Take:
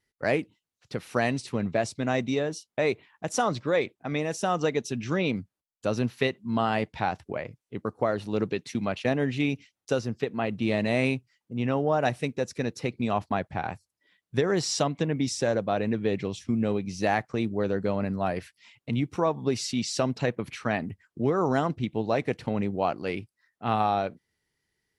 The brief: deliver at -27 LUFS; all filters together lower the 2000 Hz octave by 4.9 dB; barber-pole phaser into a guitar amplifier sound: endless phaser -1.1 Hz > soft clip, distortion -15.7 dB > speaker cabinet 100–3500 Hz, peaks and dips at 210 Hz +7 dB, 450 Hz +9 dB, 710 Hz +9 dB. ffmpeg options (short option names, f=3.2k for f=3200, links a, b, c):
-filter_complex "[0:a]equalizer=f=2k:t=o:g=-6.5,asplit=2[a][b];[b]afreqshift=-1.1[c];[a][c]amix=inputs=2:normalize=1,asoftclip=threshold=-23.5dB,highpass=100,equalizer=f=210:t=q:w=4:g=7,equalizer=f=450:t=q:w=4:g=9,equalizer=f=710:t=q:w=4:g=9,lowpass=f=3.5k:w=0.5412,lowpass=f=3.5k:w=1.3066,volume=2dB"